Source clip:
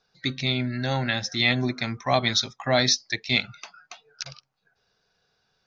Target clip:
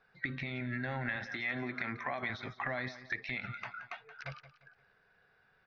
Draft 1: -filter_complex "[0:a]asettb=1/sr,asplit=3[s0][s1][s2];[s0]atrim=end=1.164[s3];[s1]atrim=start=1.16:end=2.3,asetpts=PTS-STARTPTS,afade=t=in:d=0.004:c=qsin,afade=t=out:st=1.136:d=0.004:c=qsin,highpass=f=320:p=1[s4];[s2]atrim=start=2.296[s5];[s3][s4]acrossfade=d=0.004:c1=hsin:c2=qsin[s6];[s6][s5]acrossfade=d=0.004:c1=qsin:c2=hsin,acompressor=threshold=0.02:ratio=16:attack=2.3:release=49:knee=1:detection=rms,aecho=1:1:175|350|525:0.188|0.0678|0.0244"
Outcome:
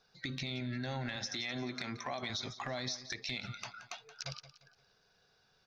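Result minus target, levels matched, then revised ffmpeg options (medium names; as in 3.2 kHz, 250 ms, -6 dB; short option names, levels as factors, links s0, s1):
2 kHz band -5.0 dB
-filter_complex "[0:a]asettb=1/sr,asplit=3[s0][s1][s2];[s0]atrim=end=1.164[s3];[s1]atrim=start=1.16:end=2.3,asetpts=PTS-STARTPTS,afade=t=in:d=0.004:c=qsin,afade=t=out:st=1.136:d=0.004:c=qsin,highpass=f=320:p=1[s4];[s2]atrim=start=2.296[s5];[s3][s4]acrossfade=d=0.004:c1=hsin:c2=qsin[s6];[s6][s5]acrossfade=d=0.004:c1=qsin:c2=hsin,acompressor=threshold=0.02:ratio=16:attack=2.3:release=49:knee=1:detection=rms,lowpass=f=1900:t=q:w=2.6,aecho=1:1:175|350|525:0.188|0.0678|0.0244"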